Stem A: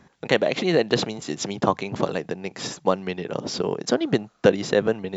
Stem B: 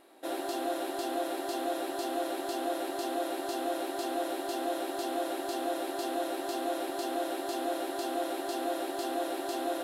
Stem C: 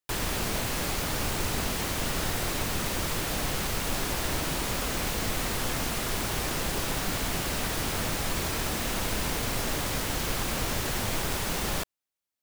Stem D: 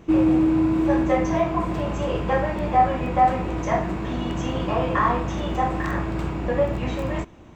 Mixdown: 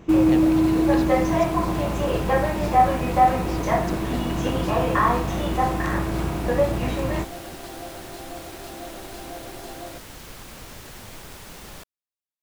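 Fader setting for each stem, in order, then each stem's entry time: -15.0 dB, -5.5 dB, -11.0 dB, +1.0 dB; 0.00 s, 0.15 s, 0.00 s, 0.00 s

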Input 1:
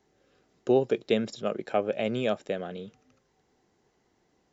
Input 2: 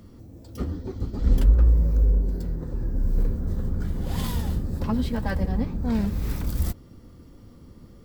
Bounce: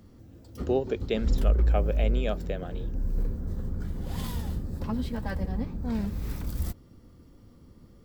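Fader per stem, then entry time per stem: -3.5 dB, -5.5 dB; 0.00 s, 0.00 s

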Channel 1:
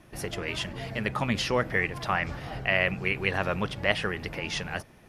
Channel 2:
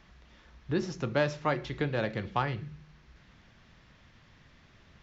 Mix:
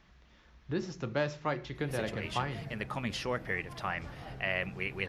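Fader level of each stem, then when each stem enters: -8.0 dB, -4.0 dB; 1.75 s, 0.00 s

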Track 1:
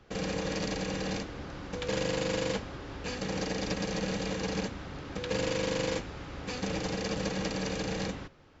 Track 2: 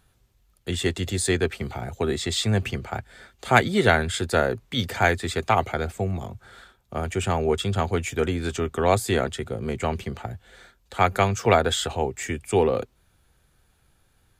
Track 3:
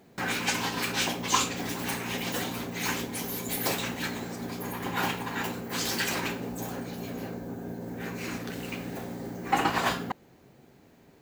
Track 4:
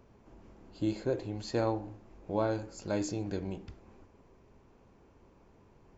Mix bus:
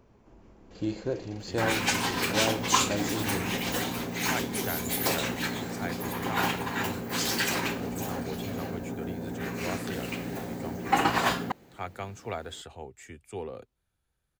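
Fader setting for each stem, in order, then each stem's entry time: -17.0 dB, -17.0 dB, +1.5 dB, +0.5 dB; 0.60 s, 0.80 s, 1.40 s, 0.00 s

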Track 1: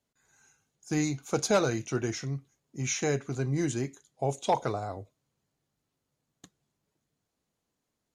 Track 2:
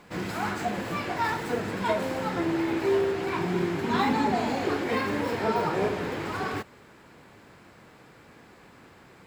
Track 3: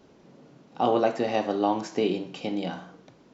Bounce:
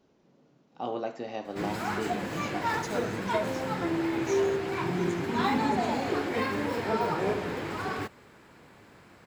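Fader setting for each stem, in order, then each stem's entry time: -12.0 dB, -2.0 dB, -10.5 dB; 1.40 s, 1.45 s, 0.00 s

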